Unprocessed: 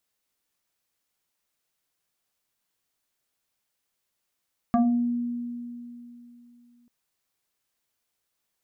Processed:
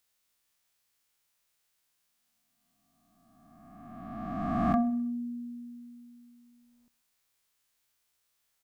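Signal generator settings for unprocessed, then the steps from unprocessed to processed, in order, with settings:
two-operator FM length 2.14 s, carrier 240 Hz, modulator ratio 1.94, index 1.6, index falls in 0.47 s exponential, decay 3.10 s, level −16.5 dB
peak hold with a rise ahead of every peak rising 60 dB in 2.17 s
parametric band 300 Hz −6 dB 3 octaves
repeating echo 64 ms, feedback 59%, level −20 dB

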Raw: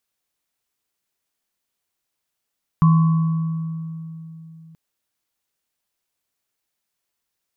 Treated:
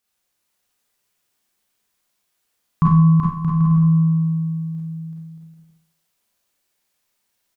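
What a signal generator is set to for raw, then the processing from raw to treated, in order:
inharmonic partials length 1.93 s, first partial 162 Hz, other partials 1,040/1,120 Hz, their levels −15/−13 dB, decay 3.51 s, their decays 1.53/1.87 s, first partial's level −9.5 dB
on a send: bouncing-ball delay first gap 380 ms, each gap 0.65×, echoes 5
on the sum: four-comb reverb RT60 0.55 s, combs from 31 ms, DRR −4 dB

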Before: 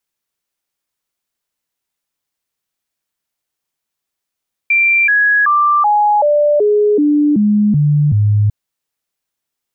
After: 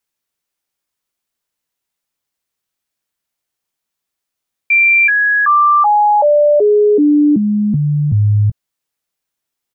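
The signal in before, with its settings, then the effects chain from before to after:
stepped sweep 2,360 Hz down, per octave 2, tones 10, 0.38 s, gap 0.00 s −8.5 dBFS
double-tracking delay 17 ms −12 dB

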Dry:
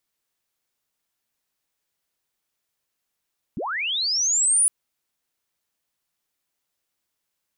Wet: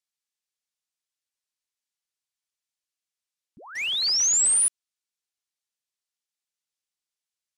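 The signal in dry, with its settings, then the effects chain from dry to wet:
glide linear 140 Hz → 10,000 Hz −26 dBFS → −14.5 dBFS 1.11 s
first-order pre-emphasis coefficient 0.9
in parallel at +2.5 dB: bit reduction 6 bits
on the sum: high-frequency loss of the air 75 metres

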